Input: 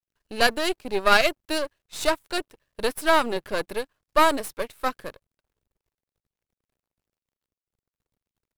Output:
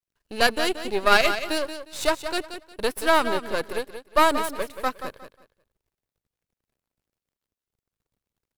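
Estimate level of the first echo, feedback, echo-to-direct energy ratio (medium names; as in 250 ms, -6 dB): -10.0 dB, 24%, -9.5 dB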